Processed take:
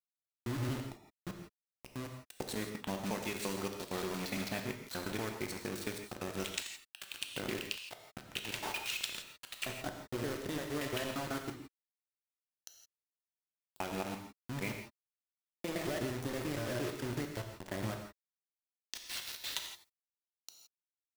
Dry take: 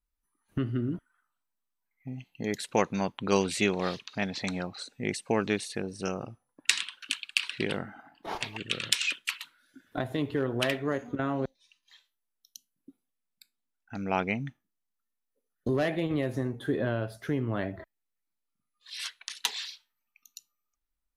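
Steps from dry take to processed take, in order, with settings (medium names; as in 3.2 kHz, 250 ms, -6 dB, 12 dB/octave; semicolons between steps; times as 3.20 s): slices played last to first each 115 ms, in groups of 4; compression 16:1, threshold -29 dBFS, peak gain reduction 13 dB; bit crusher 6-bit; gated-style reverb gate 190 ms flat, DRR 3.5 dB; trim -5.5 dB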